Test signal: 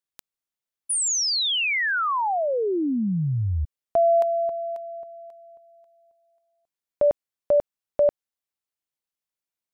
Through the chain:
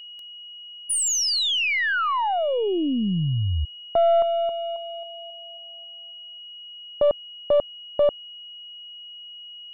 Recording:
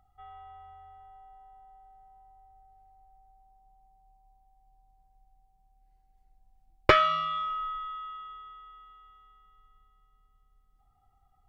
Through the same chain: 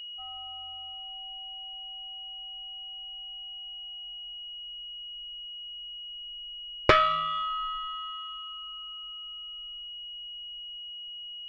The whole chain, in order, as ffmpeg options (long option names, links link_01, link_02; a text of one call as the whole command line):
ffmpeg -i in.wav -af "afftdn=noise_reduction=30:noise_floor=-47,aeval=exprs='val(0)+0.0112*sin(2*PI*2900*n/s)':channel_layout=same,aeval=exprs='(tanh(2.51*val(0)+0.4)-tanh(0.4))/2.51':channel_layout=same,volume=2dB" out.wav